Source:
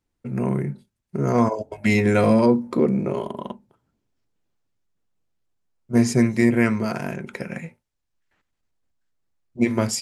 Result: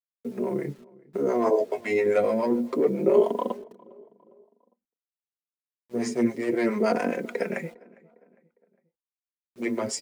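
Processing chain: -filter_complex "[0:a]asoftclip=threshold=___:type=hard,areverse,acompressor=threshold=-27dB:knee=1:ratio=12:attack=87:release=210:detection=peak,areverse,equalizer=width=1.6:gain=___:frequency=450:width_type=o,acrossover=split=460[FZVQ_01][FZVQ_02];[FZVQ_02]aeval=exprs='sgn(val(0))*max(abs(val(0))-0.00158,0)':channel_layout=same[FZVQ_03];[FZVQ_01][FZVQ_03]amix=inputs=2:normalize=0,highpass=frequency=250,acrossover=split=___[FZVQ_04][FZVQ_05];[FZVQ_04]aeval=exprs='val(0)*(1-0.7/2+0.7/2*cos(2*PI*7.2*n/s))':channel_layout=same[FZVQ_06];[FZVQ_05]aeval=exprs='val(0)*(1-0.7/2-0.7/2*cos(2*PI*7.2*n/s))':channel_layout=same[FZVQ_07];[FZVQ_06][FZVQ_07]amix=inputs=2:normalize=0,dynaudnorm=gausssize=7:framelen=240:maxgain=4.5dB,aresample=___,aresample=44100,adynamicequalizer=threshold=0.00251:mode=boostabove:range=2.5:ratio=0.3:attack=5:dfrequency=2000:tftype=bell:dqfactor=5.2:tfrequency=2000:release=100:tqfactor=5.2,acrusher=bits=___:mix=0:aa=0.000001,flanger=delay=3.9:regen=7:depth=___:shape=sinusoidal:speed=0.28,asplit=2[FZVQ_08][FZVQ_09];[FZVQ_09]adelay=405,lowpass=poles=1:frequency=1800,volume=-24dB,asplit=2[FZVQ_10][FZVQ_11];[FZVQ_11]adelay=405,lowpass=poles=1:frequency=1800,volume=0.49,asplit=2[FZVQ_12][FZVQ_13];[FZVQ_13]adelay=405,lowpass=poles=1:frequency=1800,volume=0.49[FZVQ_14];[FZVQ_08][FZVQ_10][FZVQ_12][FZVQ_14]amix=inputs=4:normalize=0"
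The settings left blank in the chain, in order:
-9.5dB, 11.5, 500, 22050, 8, 8.3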